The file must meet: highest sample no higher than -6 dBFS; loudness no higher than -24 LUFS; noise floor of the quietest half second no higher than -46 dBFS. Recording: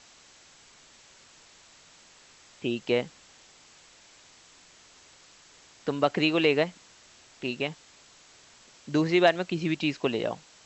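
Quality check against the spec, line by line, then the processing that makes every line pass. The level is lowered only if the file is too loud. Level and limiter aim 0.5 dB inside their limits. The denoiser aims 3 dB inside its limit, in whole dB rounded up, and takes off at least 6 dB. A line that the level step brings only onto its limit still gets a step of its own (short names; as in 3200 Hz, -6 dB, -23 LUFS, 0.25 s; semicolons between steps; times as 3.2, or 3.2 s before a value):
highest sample -8.0 dBFS: OK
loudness -27.5 LUFS: OK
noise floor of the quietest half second -56 dBFS: OK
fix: none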